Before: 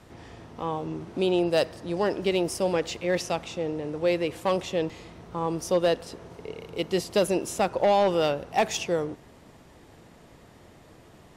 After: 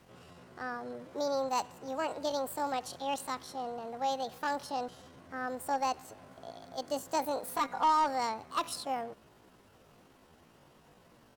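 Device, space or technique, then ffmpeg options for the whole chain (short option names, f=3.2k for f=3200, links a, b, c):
chipmunk voice: -filter_complex "[0:a]asettb=1/sr,asplit=3[a][b][c];[a]atrim=end=7.444[d];[b]atrim=start=7.44:end=8.05,asetpts=PTS-STARTPTS,afade=t=in:d=0.004:c=qsin,afade=t=out:st=0.606:d=0.004:c=qsin,aecho=1:1:6.5:0.65,atrim=end_sample=26901[e];[c]atrim=start=8.046[f];[d][e]acrossfade=d=0.004:c1=hsin:c2=qsin[g];[g][f]acrossfade=d=0.004:c1=qsin:c2=hsin,asetrate=68011,aresample=44100,atempo=0.64842,volume=-8.5dB"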